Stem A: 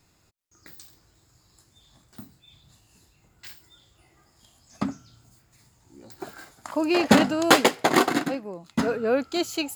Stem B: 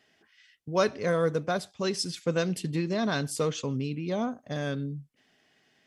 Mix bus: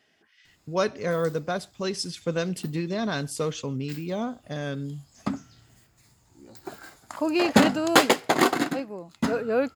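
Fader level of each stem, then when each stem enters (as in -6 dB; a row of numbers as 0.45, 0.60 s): -1.0, 0.0 dB; 0.45, 0.00 s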